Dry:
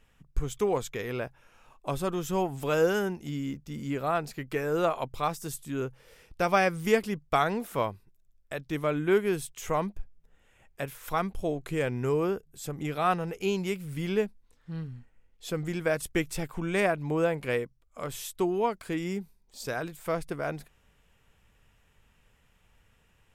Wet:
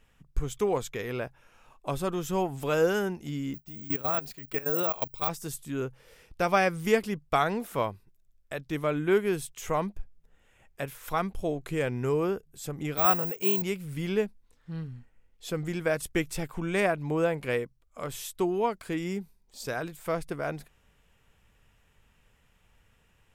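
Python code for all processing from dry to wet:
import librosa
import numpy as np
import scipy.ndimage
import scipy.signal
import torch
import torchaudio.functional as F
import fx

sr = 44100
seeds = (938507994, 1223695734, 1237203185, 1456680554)

y = fx.chain(x, sr, fx.dynamic_eq(hz=3900.0, q=1.1, threshold_db=-47.0, ratio=4.0, max_db=4),
    fx.level_steps(step_db=15),
    fx.resample_bad(factor=2, down='filtered', up='zero_stuff'), at=(3.54, 5.29))
y = fx.chain(y, sr, fx.peak_eq(hz=5500.0, db=-2.5, octaves=0.41),
    fx.resample_bad(factor=2, down='filtered', up='zero_stuff'),
    fx.highpass(hz=140.0, slope=6), at=(12.97, 13.62))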